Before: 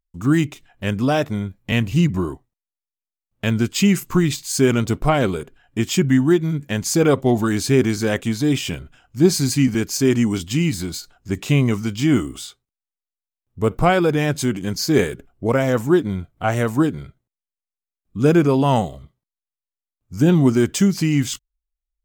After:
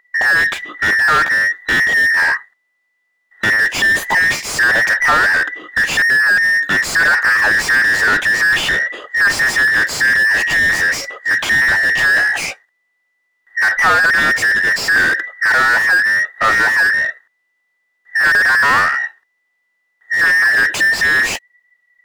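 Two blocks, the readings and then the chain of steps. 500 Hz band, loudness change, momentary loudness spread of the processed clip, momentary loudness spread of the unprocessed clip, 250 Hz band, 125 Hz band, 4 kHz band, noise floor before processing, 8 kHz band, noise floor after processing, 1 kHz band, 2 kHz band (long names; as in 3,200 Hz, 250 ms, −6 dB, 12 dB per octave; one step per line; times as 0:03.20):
−8.5 dB, +7.0 dB, 6 LU, 12 LU, −15.5 dB, −16.0 dB, +7.0 dB, below −85 dBFS, +2.5 dB, −67 dBFS, +7.5 dB, +21.5 dB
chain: frequency inversion band by band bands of 2,000 Hz
mid-hump overdrive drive 35 dB, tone 1,200 Hz, clips at −2 dBFS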